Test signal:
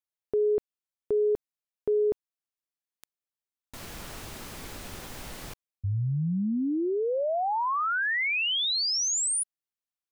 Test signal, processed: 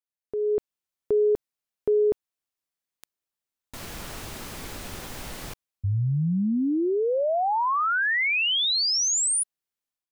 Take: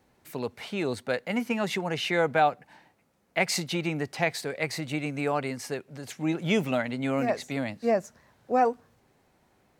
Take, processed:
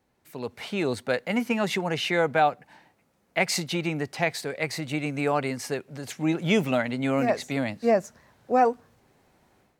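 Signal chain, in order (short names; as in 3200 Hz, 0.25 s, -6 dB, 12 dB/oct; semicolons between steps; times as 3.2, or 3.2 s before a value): AGC gain up to 10 dB; gain -6.5 dB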